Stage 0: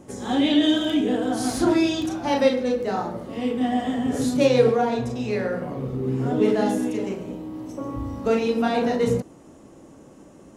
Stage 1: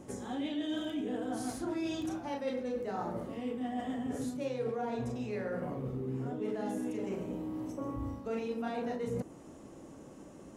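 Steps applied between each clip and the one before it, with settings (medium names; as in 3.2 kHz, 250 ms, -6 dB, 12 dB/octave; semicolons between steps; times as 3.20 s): reverse; compression 6:1, threshold -30 dBFS, peak gain reduction 17 dB; reverse; dynamic bell 4.2 kHz, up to -5 dB, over -59 dBFS, Q 1.2; trim -3.5 dB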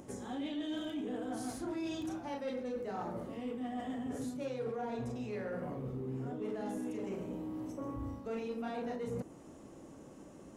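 upward compressor, threshold -50 dBFS; saturation -27.5 dBFS, distortion -23 dB; trim -2 dB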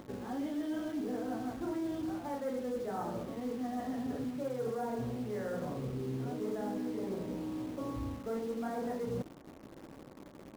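Savitzky-Golay filter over 41 samples; in parallel at -4 dB: word length cut 8-bit, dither none; on the sum: trim -2 dB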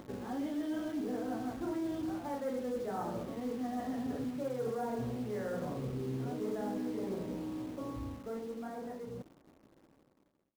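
fade out at the end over 3.45 s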